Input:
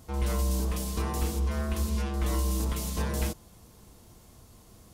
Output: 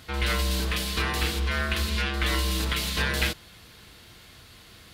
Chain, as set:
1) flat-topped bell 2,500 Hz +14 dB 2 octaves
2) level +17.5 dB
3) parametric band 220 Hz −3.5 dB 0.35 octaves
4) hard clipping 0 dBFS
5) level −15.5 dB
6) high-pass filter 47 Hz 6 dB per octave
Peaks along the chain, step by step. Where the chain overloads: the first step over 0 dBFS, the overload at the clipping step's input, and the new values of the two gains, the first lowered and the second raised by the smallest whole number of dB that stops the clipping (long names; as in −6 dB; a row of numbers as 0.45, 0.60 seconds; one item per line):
−11.5, +6.0, +6.0, 0.0, −15.5, −12.5 dBFS
step 2, 6.0 dB
step 2 +11.5 dB, step 5 −9.5 dB